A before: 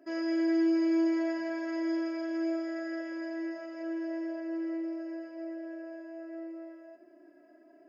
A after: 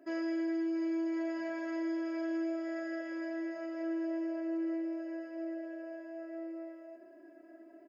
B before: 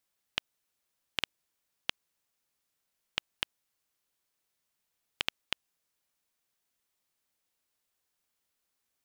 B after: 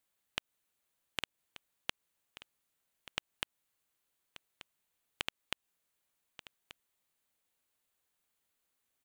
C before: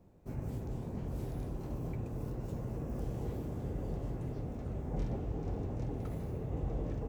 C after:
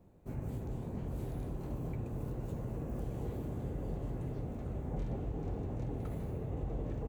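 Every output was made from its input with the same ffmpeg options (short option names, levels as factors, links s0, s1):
-af "equalizer=f=5300:w=3.6:g=-6.5,acompressor=threshold=0.0251:ratio=6,aecho=1:1:1183:0.168"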